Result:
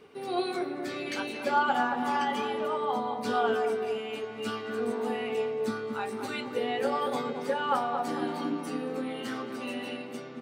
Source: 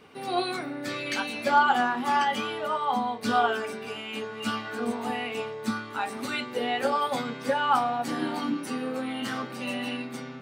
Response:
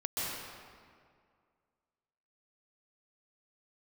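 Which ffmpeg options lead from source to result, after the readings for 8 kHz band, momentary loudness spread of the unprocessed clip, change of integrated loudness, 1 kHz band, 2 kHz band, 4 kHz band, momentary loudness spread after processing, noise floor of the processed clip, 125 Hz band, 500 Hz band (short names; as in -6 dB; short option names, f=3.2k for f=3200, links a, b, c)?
-5.5 dB, 9 LU, -2.5 dB, -4.0 dB, -5.0 dB, -5.5 dB, 8 LU, -40 dBFS, -3.5 dB, +1.5 dB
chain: -filter_complex "[0:a]equalizer=f=410:t=o:w=0.48:g=9,areverse,acompressor=mode=upward:threshold=-35dB:ratio=2.5,areverse,asplit=2[a][b];[b]adelay=226,lowpass=f=1.1k:p=1,volume=-4.5dB,asplit=2[c][d];[d]adelay=226,lowpass=f=1.1k:p=1,volume=0.54,asplit=2[e][f];[f]adelay=226,lowpass=f=1.1k:p=1,volume=0.54,asplit=2[g][h];[h]adelay=226,lowpass=f=1.1k:p=1,volume=0.54,asplit=2[i][j];[j]adelay=226,lowpass=f=1.1k:p=1,volume=0.54,asplit=2[k][l];[l]adelay=226,lowpass=f=1.1k:p=1,volume=0.54,asplit=2[m][n];[n]adelay=226,lowpass=f=1.1k:p=1,volume=0.54[o];[a][c][e][g][i][k][m][o]amix=inputs=8:normalize=0,volume=-5.5dB"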